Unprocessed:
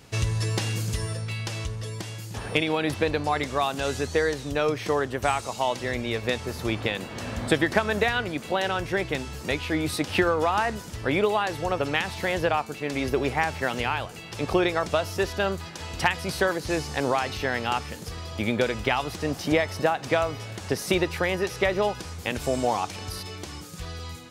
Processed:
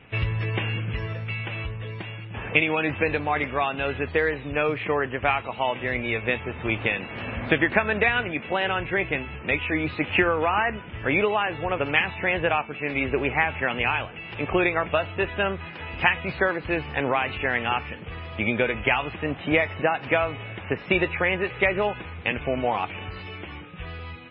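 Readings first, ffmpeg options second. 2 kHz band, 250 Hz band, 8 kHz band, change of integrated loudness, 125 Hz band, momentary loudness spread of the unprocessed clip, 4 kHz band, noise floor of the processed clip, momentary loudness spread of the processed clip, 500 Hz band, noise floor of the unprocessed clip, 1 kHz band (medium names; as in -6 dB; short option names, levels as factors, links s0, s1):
+5.0 dB, -0.5 dB, under -40 dB, +2.0 dB, -0.5 dB, 10 LU, -1.5 dB, -39 dBFS, 11 LU, 0.0 dB, -40 dBFS, +0.5 dB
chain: -af "highshelf=f=3600:t=q:w=3:g=-12.5" -ar 16000 -c:a libmp3lame -b:a 16k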